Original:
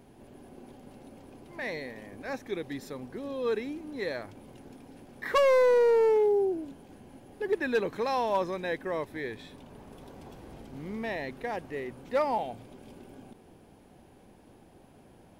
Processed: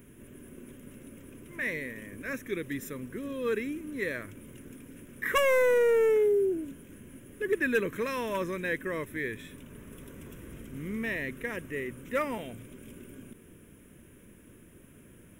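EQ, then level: high shelf 3500 Hz +6.5 dB; high shelf 8900 Hz +4.5 dB; fixed phaser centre 1900 Hz, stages 4; +3.5 dB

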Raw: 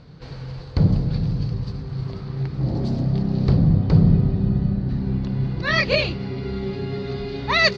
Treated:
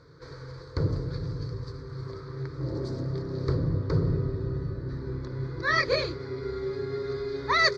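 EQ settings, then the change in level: HPF 160 Hz 6 dB/oct; notch 590 Hz, Q 12; fixed phaser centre 760 Hz, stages 6; 0.0 dB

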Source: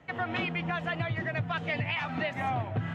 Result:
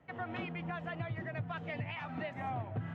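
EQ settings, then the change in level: high shelf 2300 Hz -10 dB; -6.5 dB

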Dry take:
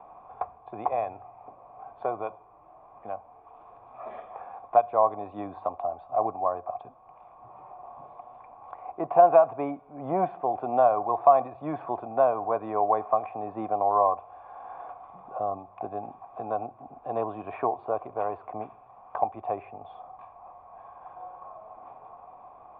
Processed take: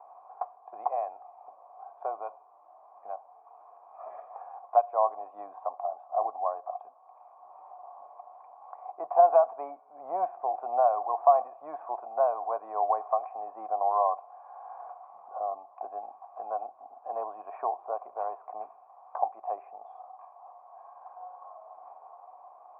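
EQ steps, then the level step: ladder band-pass 920 Hz, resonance 35%; air absorption 270 m; +7.0 dB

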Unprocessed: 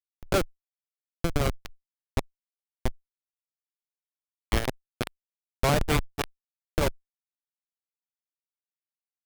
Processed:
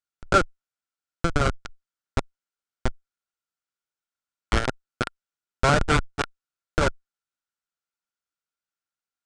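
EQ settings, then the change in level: steep low-pass 8800 Hz 36 dB/oct; bell 1400 Hz +13.5 dB 0.24 oct; +2.5 dB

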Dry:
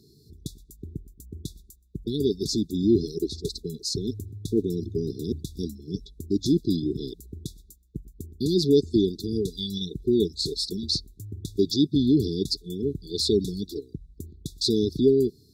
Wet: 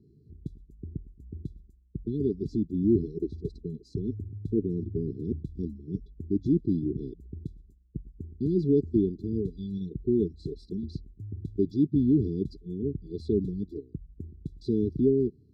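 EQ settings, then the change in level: running mean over 60 samples; 0.0 dB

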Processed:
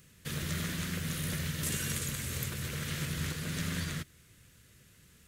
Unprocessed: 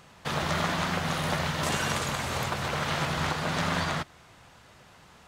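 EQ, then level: EQ curve 110 Hz 0 dB, 470 Hz -8 dB, 800 Hz -26 dB, 1700 Hz -7 dB, 4800 Hz -5 dB, 12000 Hz +9 dB; -1.5 dB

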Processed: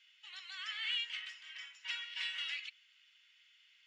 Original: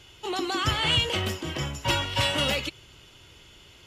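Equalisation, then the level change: ladder band-pass 2200 Hz, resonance 50%; air absorption 80 m; differentiator; +7.5 dB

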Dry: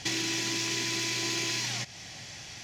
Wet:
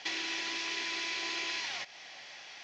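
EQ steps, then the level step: BPF 590–6200 Hz; air absorption 130 m; 0.0 dB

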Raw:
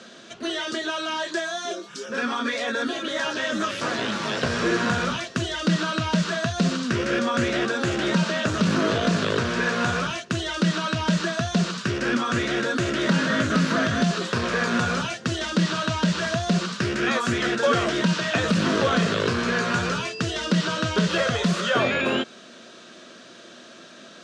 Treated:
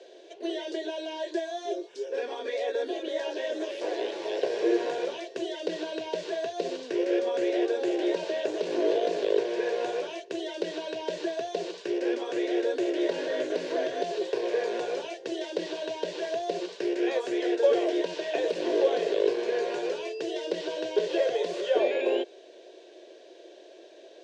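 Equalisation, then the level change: ladder high-pass 320 Hz, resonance 50%; LPF 1900 Hz 6 dB/oct; fixed phaser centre 530 Hz, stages 4; +6.5 dB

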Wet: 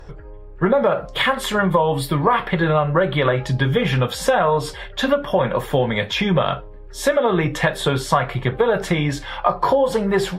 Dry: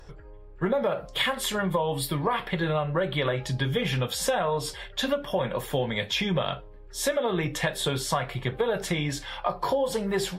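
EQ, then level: dynamic EQ 1300 Hz, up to +4 dB, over -41 dBFS, Q 1.4; high shelf 3000 Hz -9 dB; +8.5 dB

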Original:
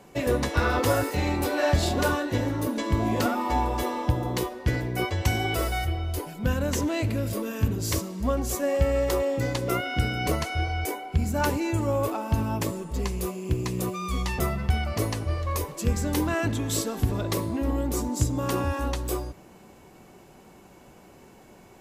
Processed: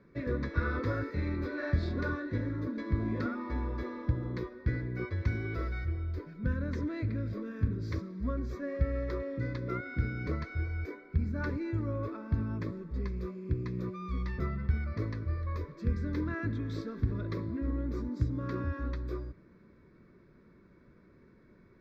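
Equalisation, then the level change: air absorption 350 m; fixed phaser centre 2900 Hz, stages 6; -5.0 dB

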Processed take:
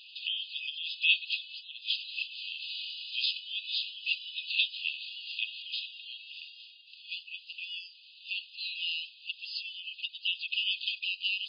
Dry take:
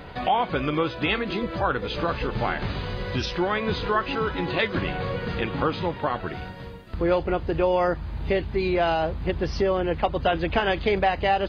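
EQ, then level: brick-wall FIR high-pass 2500 Hz; brick-wall FIR low-pass 5100 Hz; +4.0 dB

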